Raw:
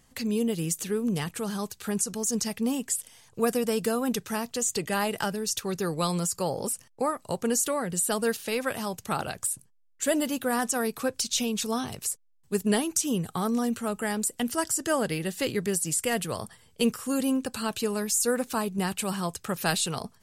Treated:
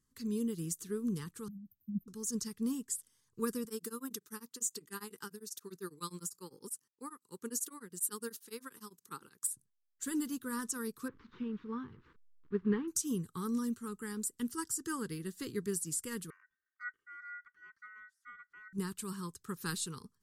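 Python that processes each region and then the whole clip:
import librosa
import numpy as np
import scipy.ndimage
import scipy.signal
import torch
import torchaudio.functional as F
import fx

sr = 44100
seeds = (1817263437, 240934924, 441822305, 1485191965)

y = fx.chain(x, sr, fx.brickwall_bandstop(low_hz=330.0, high_hz=13000.0),
    fx.band_widen(depth_pct=100), at=(1.48, 2.08))
y = fx.chain(y, sr, fx.highpass(hz=220.0, slope=12),
    fx.high_shelf(hz=11000.0, db=9.0),
    fx.tremolo_abs(hz=10.0), at=(3.65, 9.47))
y = fx.chain(y, sr, fx.delta_mod(bps=64000, step_db=-36.5),
    fx.lowpass(hz=2500.0, slope=24), at=(11.08, 12.88))
y = fx.chain(y, sr, fx.bandpass_q(hz=180.0, q=1.2),
    fx.ring_mod(carrier_hz=1700.0), at=(16.3, 18.73))
y = scipy.signal.sosfilt(scipy.signal.cheby1(2, 1.0, [400.0, 1100.0], 'bandstop', fs=sr, output='sos'), y)
y = fx.peak_eq(y, sr, hz=2500.0, db=-11.0, octaves=0.88)
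y = fx.upward_expand(y, sr, threshold_db=-46.0, expansion=1.5)
y = y * librosa.db_to_amplitude(-4.5)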